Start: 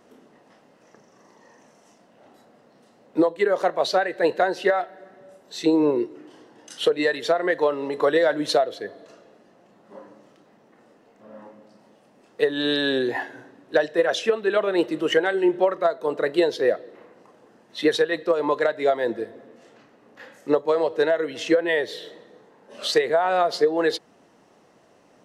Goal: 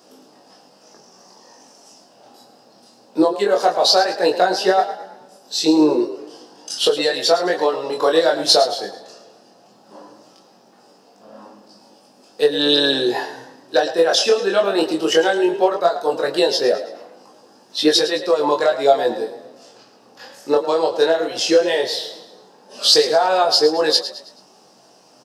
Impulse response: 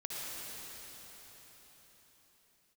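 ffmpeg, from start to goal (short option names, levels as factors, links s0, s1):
-filter_complex "[0:a]equalizer=f=800:t=o:w=0.33:g=6,equalizer=f=2000:t=o:w=0.33:g=-10,equalizer=f=5000:t=o:w=0.33:g=12,flanger=delay=19.5:depth=5.6:speed=0.17,highpass=130,highshelf=f=3500:g=10.5,asplit=2[s0][s1];[s1]adelay=16,volume=0.299[s2];[s0][s2]amix=inputs=2:normalize=0,asplit=5[s3][s4][s5][s6][s7];[s4]adelay=108,afreqshift=33,volume=0.237[s8];[s5]adelay=216,afreqshift=66,volume=0.1[s9];[s6]adelay=324,afreqshift=99,volume=0.0417[s10];[s7]adelay=432,afreqshift=132,volume=0.0176[s11];[s3][s8][s9][s10][s11]amix=inputs=5:normalize=0,volume=1.88"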